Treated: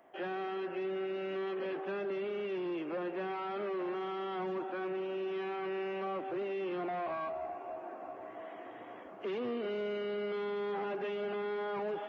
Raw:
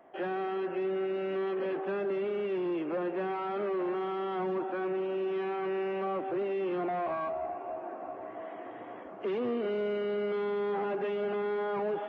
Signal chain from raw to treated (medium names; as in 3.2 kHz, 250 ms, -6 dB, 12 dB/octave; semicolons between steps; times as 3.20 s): treble shelf 2.6 kHz +9.5 dB; trim -5 dB